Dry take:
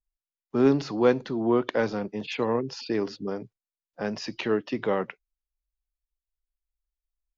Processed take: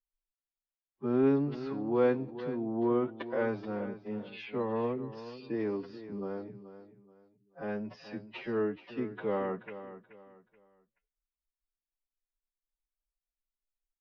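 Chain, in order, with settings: time stretch by phase-locked vocoder 1.9×; distance through air 310 m; feedback delay 429 ms, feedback 30%, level -13 dB; trim -6 dB

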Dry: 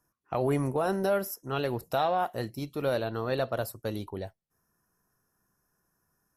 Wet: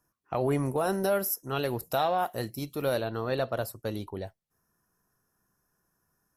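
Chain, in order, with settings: 0.68–3.01 s: treble shelf 7.2 kHz +10.5 dB

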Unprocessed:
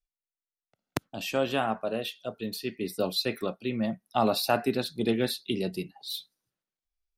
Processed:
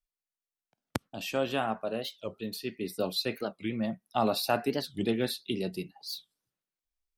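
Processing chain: warped record 45 rpm, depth 250 cents; trim -2.5 dB

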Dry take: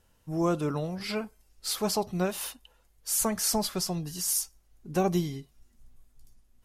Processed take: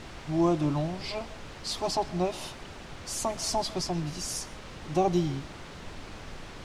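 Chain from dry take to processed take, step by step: static phaser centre 310 Hz, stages 8; added noise pink -46 dBFS; distance through air 100 m; on a send: reverberation RT60 0.55 s, pre-delay 91 ms, DRR 20.5 dB; on the sum: trim +4.5 dB

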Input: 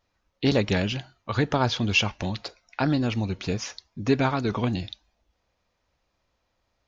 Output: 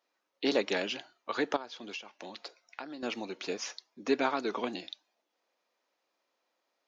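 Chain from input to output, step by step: high-pass 290 Hz 24 dB/octave; 1.56–3.03 s: compression 16:1, threshold -35 dBFS, peak gain reduction 19.5 dB; trim -4 dB

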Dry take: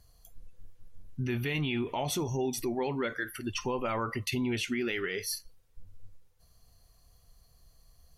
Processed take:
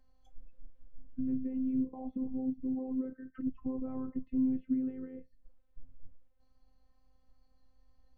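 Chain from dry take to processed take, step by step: 1.32–3.88 s: resonances exaggerated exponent 1.5; spectral noise reduction 7 dB; low-pass that closes with the level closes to 320 Hz, closed at -32.5 dBFS; dynamic bell 470 Hz, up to -8 dB, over -54 dBFS, Q 2.3; robot voice 260 Hz; tape spacing loss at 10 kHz 33 dB; trim +6 dB

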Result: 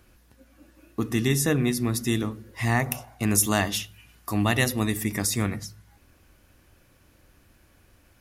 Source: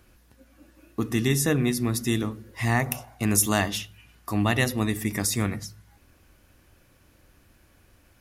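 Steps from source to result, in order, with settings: 3.66–5.05 s: treble shelf 5.3 kHz +5 dB

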